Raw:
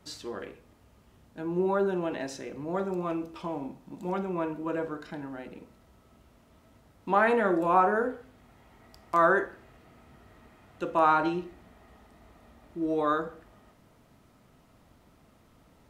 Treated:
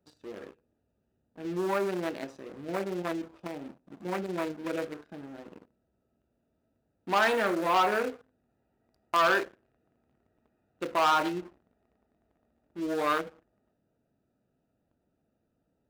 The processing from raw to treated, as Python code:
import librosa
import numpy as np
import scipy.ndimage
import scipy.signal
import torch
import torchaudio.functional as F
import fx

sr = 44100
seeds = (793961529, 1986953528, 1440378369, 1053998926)

p1 = fx.wiener(x, sr, points=41)
p2 = fx.leveller(p1, sr, passes=2)
p3 = fx.level_steps(p2, sr, step_db=14)
p4 = p2 + (p3 * librosa.db_to_amplitude(-1.0))
p5 = fx.tilt_eq(p4, sr, slope=3.0)
y = p5 * librosa.db_to_amplitude(-7.5)